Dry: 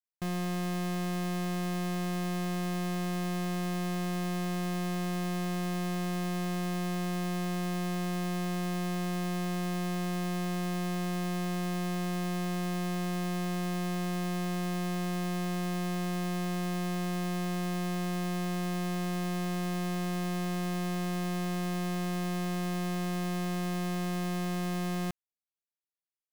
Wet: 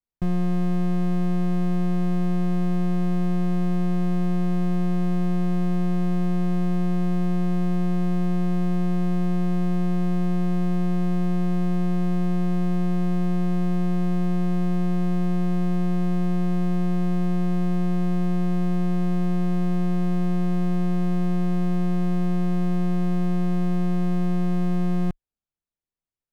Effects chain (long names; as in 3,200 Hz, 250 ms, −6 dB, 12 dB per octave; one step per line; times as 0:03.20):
spectral tilt −3.5 dB per octave
level +1 dB